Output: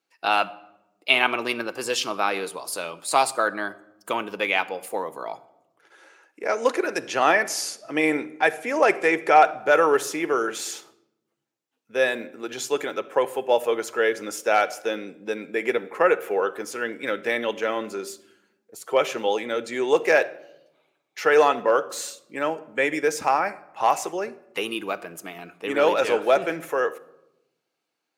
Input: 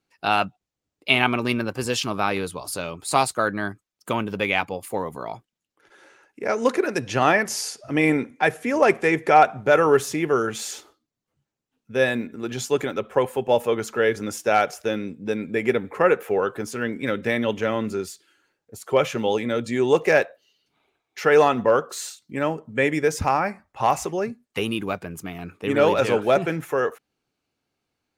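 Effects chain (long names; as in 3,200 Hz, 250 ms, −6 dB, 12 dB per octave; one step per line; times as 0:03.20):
high-pass filter 380 Hz 12 dB per octave
rectangular room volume 3,300 cubic metres, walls furnished, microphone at 0.66 metres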